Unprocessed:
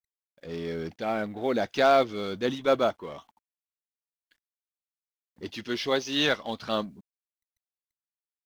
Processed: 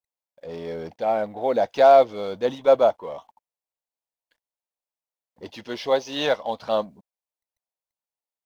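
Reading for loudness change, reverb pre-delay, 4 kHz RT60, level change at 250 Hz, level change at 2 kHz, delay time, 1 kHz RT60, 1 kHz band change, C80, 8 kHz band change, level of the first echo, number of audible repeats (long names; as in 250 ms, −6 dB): +6.0 dB, no reverb audible, no reverb audible, −2.5 dB, −2.5 dB, no echo audible, no reverb audible, +6.5 dB, no reverb audible, can't be measured, no echo audible, no echo audible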